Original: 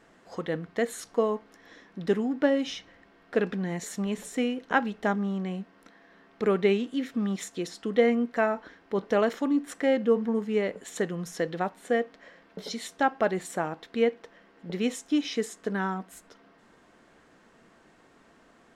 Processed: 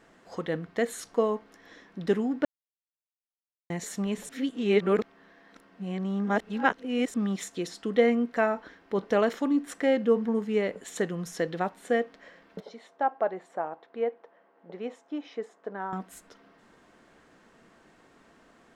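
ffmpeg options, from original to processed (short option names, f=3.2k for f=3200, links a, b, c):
-filter_complex "[0:a]asettb=1/sr,asplit=3[a][b][c];[a]atrim=end=12.604[d];[b]atrim=start=12.6:end=15.93,asetpts=PTS-STARTPTS,afade=t=in:d=0.004:c=qsin,afade=t=out:st=3.326:d=0.004:c=qsin,bandpass=f=730:t=q:w=1.4[e];[c]atrim=start=15.926[f];[d][e]acrossfade=d=0.004:c1=hsin:c2=qsin[g];[g][f]acrossfade=d=0.004:c1=qsin:c2=hsin,asplit=5[h][i][j][k][l];[h]atrim=end=2.45,asetpts=PTS-STARTPTS,afade=t=out:st=2.446:d=0.004:c=hsin[m];[i]atrim=start=2.45:end=3.7,asetpts=PTS-STARTPTS,volume=0[n];[j]atrim=start=3.7:end=4.292,asetpts=PTS-STARTPTS,afade=t=in:d=0.004:c=hsin[o];[k]atrim=start=4.288:end=7.142,asetpts=PTS-STARTPTS,areverse[p];[l]atrim=start=7.138[q];[m][n][o]concat=n=3:v=0:a=1[r];[r][p]acrossfade=d=0.004:c1=hsin:c2=hsin[s];[s][q]acrossfade=d=0.004:c1=hsin:c2=hsin"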